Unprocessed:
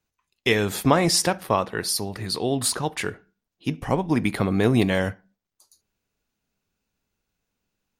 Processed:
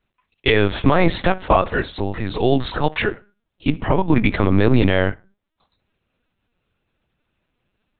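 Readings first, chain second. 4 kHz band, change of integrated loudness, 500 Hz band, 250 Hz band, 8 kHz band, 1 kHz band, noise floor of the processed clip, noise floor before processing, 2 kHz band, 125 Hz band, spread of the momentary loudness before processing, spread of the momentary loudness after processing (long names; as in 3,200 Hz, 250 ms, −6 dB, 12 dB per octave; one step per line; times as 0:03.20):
−0.5 dB, +4.0 dB, +5.0 dB, +4.5 dB, below −40 dB, +5.0 dB, −78 dBFS, −85 dBFS, +5.5 dB, +6.0 dB, 11 LU, 9 LU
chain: linear-prediction vocoder at 8 kHz pitch kept
brickwall limiter −11 dBFS, peak gain reduction 9.5 dB
level +8 dB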